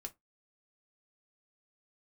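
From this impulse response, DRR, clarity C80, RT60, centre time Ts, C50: 3.5 dB, 34.0 dB, 0.20 s, 5 ms, 23.0 dB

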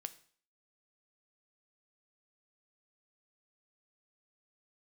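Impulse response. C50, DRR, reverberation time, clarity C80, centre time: 16.5 dB, 11.0 dB, 0.50 s, 20.0 dB, 4 ms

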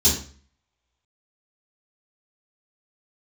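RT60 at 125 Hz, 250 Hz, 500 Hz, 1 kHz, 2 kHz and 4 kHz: 0.50, 0.50, 0.45, 0.45, 0.40, 0.40 seconds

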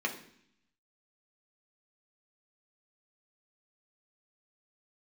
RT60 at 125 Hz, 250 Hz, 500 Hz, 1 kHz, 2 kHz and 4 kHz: 0.95, 0.90, 0.65, 0.65, 0.75, 0.80 seconds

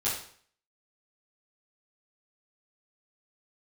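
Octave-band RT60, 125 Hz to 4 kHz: 0.55, 0.50, 0.55, 0.55, 0.50, 0.50 seconds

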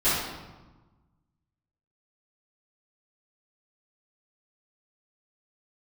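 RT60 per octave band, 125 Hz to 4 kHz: 1.8, 1.6, 1.2, 1.2, 0.95, 0.80 seconds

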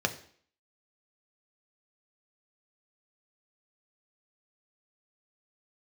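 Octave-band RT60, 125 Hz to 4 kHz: 0.45, 0.55, 0.55, 0.55, 0.55, 0.55 seconds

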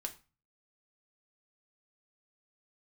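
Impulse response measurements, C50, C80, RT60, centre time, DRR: 15.0 dB, 20.5 dB, 0.30 s, 7 ms, 4.0 dB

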